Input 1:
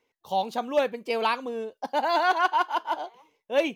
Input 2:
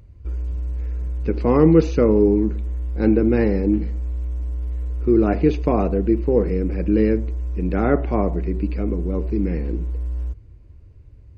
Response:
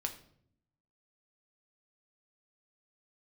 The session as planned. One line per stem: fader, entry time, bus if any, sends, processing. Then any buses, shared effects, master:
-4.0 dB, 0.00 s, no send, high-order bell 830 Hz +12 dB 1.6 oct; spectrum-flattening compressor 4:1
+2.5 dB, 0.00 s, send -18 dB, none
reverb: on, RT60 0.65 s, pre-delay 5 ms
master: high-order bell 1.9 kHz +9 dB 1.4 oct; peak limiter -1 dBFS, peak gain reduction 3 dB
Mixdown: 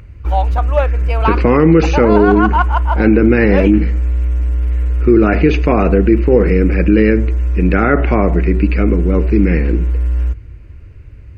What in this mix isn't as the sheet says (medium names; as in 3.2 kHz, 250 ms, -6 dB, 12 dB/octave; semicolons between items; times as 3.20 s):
stem 1: missing spectrum-flattening compressor 4:1; stem 2 +2.5 dB -> +9.0 dB